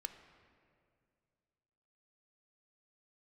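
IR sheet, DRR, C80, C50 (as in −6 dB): 8.0 dB, 11.5 dB, 10.0 dB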